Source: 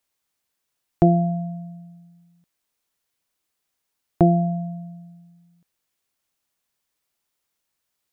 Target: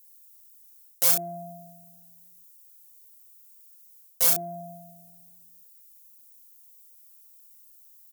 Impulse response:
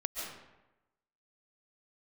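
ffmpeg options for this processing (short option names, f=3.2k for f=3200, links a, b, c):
-filter_complex "[0:a]aeval=exprs='(mod(3.98*val(0)+1,2)-1)/3.98':c=same,areverse,acompressor=threshold=-25dB:ratio=6,areverse,bass=f=250:g=-13,treble=f=4k:g=14,asplit=2[a][b];[b]aecho=0:1:35|67:0.531|0.355[c];[a][c]amix=inputs=2:normalize=0,asoftclip=type=tanh:threshold=-12dB,aemphasis=mode=production:type=50fm,volume=-6.5dB"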